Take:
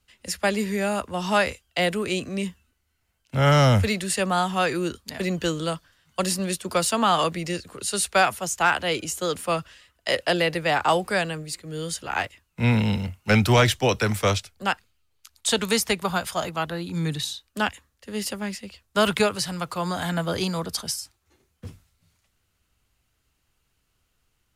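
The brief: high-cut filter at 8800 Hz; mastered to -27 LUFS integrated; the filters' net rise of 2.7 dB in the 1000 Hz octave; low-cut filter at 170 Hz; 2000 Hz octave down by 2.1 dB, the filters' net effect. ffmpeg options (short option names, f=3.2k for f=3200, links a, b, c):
-af "highpass=170,lowpass=8.8k,equalizer=f=1k:t=o:g=5,equalizer=f=2k:t=o:g=-5,volume=-2.5dB"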